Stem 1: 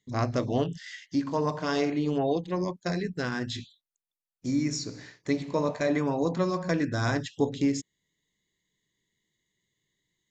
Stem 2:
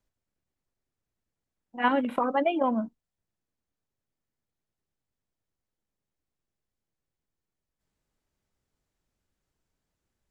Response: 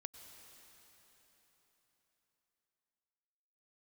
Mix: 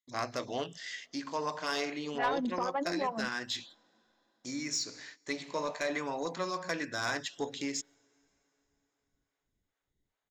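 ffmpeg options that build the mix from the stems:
-filter_complex "[0:a]agate=range=-17dB:threshold=-50dB:ratio=16:detection=peak,highpass=frequency=1400:poles=1,volume=2dB,asplit=2[link_01][link_02];[link_02]volume=-20.5dB[link_03];[1:a]lowpass=2800,acompressor=threshold=-29dB:ratio=2,acrossover=split=490[link_04][link_05];[link_04]aeval=exprs='val(0)*(1-1/2+1/2*cos(2*PI*2.4*n/s))':channel_layout=same[link_06];[link_05]aeval=exprs='val(0)*(1-1/2-1/2*cos(2*PI*2.4*n/s))':channel_layout=same[link_07];[link_06][link_07]amix=inputs=2:normalize=0,adelay=400,volume=1.5dB,asplit=2[link_08][link_09];[link_09]volume=-18.5dB[link_10];[2:a]atrim=start_sample=2205[link_11];[link_03][link_10]amix=inputs=2:normalize=0[link_12];[link_12][link_11]afir=irnorm=-1:irlink=0[link_13];[link_01][link_08][link_13]amix=inputs=3:normalize=0,asoftclip=type=tanh:threshold=-22.5dB"

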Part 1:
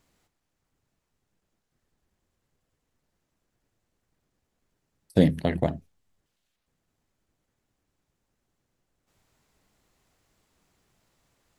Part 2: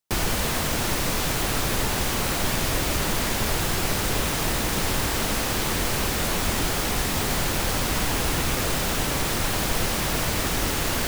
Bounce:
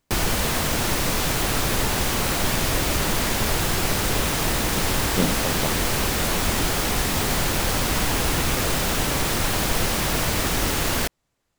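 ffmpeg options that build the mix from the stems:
ffmpeg -i stem1.wav -i stem2.wav -filter_complex "[0:a]volume=-4.5dB[link_01];[1:a]volume=2dB[link_02];[link_01][link_02]amix=inputs=2:normalize=0" out.wav

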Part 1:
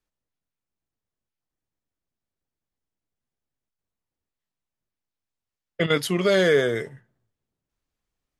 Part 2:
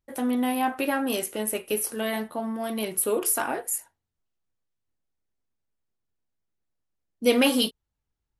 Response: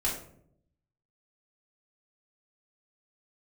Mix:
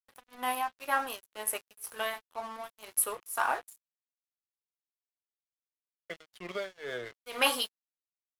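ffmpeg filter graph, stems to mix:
-filter_complex "[0:a]acrossover=split=470 4500:gain=0.178 1 0.2[link_01][link_02][link_03];[link_01][link_02][link_03]amix=inputs=3:normalize=0,adelay=300,volume=-7.5dB[link_04];[1:a]highpass=710,equalizer=frequency=1100:width_type=o:width=0.88:gain=8,volume=-1dB[link_05];[link_04][link_05]amix=inputs=2:normalize=0,lowshelf=frequency=100:gain=9,tremolo=f=2:d=0.9,aeval=exprs='sgn(val(0))*max(abs(val(0))-0.00501,0)':channel_layout=same"

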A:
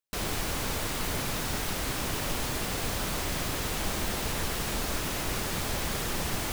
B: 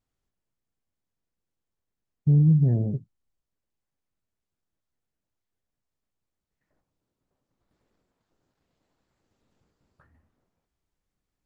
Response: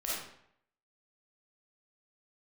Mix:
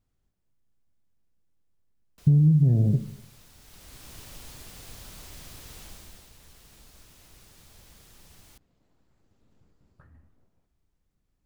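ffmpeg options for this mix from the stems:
-filter_complex "[0:a]acrossover=split=140|3000[link_01][link_02][link_03];[link_02]acompressor=threshold=-40dB:ratio=6[link_04];[link_01][link_04][link_03]amix=inputs=3:normalize=0,adelay=2050,volume=-11.5dB,afade=type=in:start_time=3.59:duration=0.59:silence=0.334965,afade=type=out:start_time=5.8:duration=0.51:silence=0.354813[link_05];[1:a]lowshelf=frequency=290:gain=9,volume=-0.5dB,asplit=2[link_06][link_07];[link_07]volume=-15.5dB[link_08];[2:a]atrim=start_sample=2205[link_09];[link_08][link_09]afir=irnorm=-1:irlink=0[link_10];[link_05][link_06][link_10]amix=inputs=3:normalize=0,acompressor=threshold=-16dB:ratio=6"

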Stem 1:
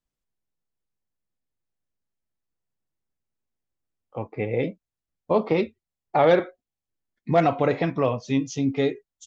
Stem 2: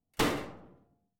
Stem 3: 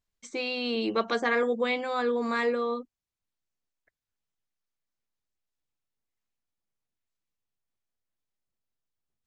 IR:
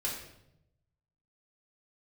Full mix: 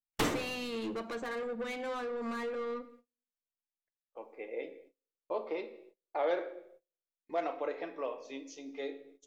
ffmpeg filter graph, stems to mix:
-filter_complex "[0:a]highpass=frequency=340:width=0.5412,highpass=frequency=340:width=1.3066,volume=-16dB,asplit=2[link_01][link_02];[link_02]volume=-8dB[link_03];[1:a]volume=-2.5dB[link_04];[2:a]acompressor=threshold=-31dB:ratio=16,asoftclip=type=tanh:threshold=-37dB,volume=1.5dB,asplit=2[link_05][link_06];[link_06]volume=-13.5dB[link_07];[3:a]atrim=start_sample=2205[link_08];[link_03][link_07]amix=inputs=2:normalize=0[link_09];[link_09][link_08]afir=irnorm=-1:irlink=0[link_10];[link_01][link_04][link_05][link_10]amix=inputs=4:normalize=0,agate=range=-28dB:threshold=-58dB:ratio=16:detection=peak,adynamicequalizer=threshold=0.00178:dfrequency=4900:dqfactor=0.72:tfrequency=4900:tqfactor=0.72:attack=5:release=100:ratio=0.375:range=2.5:mode=cutabove:tftype=bell"

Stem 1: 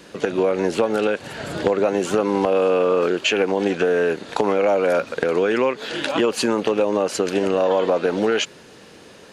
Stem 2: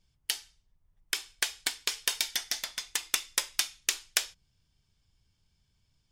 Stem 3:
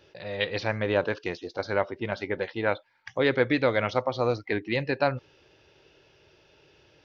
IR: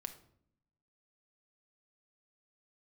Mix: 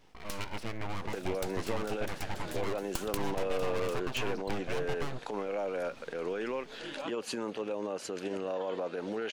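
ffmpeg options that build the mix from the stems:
-filter_complex "[0:a]alimiter=limit=-11.5dB:level=0:latency=1:release=33,adelay=900,volume=-14.5dB[link_01];[1:a]volume=2.5dB[link_02];[2:a]equalizer=frequency=100:width_type=o:width=0.33:gain=4,equalizer=frequency=160:width_type=o:width=0.33:gain=3,equalizer=frequency=250:width_type=o:width=0.33:gain=6,equalizer=frequency=400:width_type=o:width=0.33:gain=5,equalizer=frequency=4000:width_type=o:width=0.33:gain=-10,dynaudnorm=framelen=660:gausssize=3:maxgain=10dB,asoftclip=type=tanh:threshold=-14.5dB,volume=-4.5dB,asplit=2[link_03][link_04];[link_04]apad=whole_len=269649[link_05];[link_02][link_05]sidechaincompress=threshold=-46dB:ratio=8:attack=16:release=137[link_06];[link_06][link_03]amix=inputs=2:normalize=0,aeval=exprs='abs(val(0))':channel_layout=same,acompressor=threshold=-31dB:ratio=6,volume=0dB[link_07];[link_01][link_07]amix=inputs=2:normalize=0"

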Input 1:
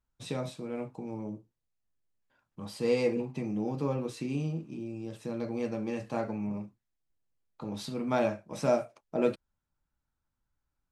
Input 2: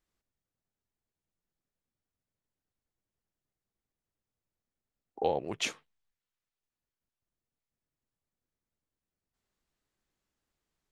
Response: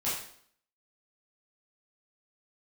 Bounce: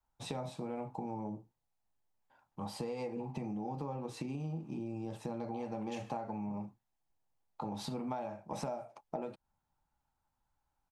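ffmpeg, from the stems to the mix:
-filter_complex "[0:a]adynamicequalizer=threshold=0.00562:dfrequency=150:dqfactor=0.74:tfrequency=150:tqfactor=0.74:attack=5:release=100:ratio=0.375:range=2.5:mode=boostabove:tftype=bell,acompressor=threshold=-30dB:ratio=6,volume=-1.5dB[link_01];[1:a]highpass=1300,adelay=300,volume=-14.5dB,asplit=2[link_02][link_03];[link_03]volume=-15.5dB[link_04];[2:a]atrim=start_sample=2205[link_05];[link_04][link_05]afir=irnorm=-1:irlink=0[link_06];[link_01][link_02][link_06]amix=inputs=3:normalize=0,equalizer=frequency=830:width=2.2:gain=14.5,acompressor=threshold=-36dB:ratio=6"

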